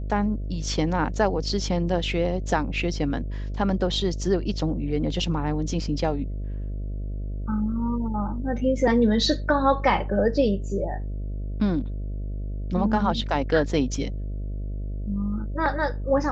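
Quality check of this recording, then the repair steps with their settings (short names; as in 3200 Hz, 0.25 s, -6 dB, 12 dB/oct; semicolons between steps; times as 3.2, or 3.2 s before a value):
buzz 50 Hz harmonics 13 -30 dBFS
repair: de-hum 50 Hz, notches 13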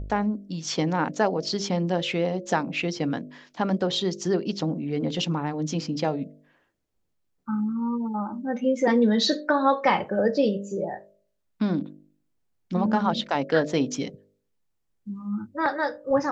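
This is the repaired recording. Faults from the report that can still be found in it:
none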